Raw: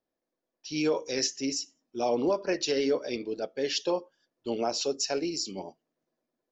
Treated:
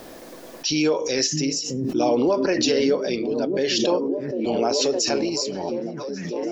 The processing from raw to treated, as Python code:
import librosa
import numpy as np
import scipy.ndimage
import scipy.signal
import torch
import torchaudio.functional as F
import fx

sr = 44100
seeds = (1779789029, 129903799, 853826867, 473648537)

p1 = x + fx.echo_stepped(x, sr, ms=614, hz=160.0, octaves=0.7, feedback_pct=70, wet_db=-0.5, dry=0)
p2 = fx.pre_swell(p1, sr, db_per_s=27.0)
y = p2 * 10.0 ** (5.5 / 20.0)